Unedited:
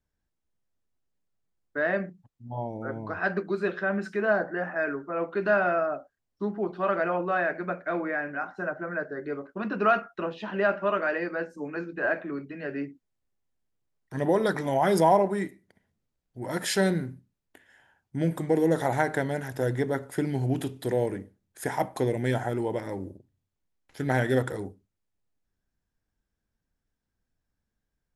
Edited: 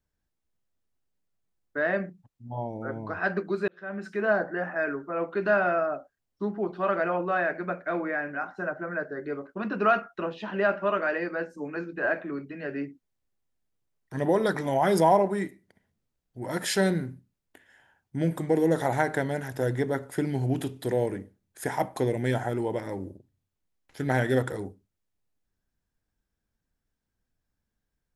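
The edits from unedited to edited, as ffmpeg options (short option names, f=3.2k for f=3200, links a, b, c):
-filter_complex "[0:a]asplit=2[a][b];[a]atrim=end=3.68,asetpts=PTS-STARTPTS,afade=t=out:st=3.676:d=0.004:c=hsin[c];[b]atrim=start=3.68,asetpts=PTS-STARTPTS,afade=t=in:d=0.58[d];[c][d]concat=n=2:v=0:a=1"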